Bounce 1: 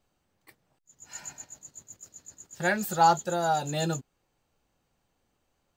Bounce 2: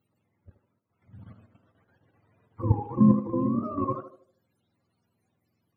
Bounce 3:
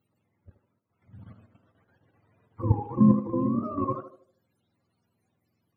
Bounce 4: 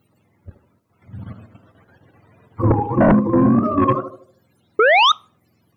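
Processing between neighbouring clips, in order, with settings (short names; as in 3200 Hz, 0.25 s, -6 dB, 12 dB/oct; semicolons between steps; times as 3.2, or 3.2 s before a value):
spectrum mirrored in octaves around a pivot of 420 Hz; level quantiser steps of 10 dB; narrowing echo 77 ms, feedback 45%, band-pass 490 Hz, level -6 dB; gain +4.5 dB
nothing audible
painted sound rise, 4.79–5.12, 410–1300 Hz -16 dBFS; sine folder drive 10 dB, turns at -8.5 dBFS; on a send at -23.5 dB: reverb RT60 0.40 s, pre-delay 3 ms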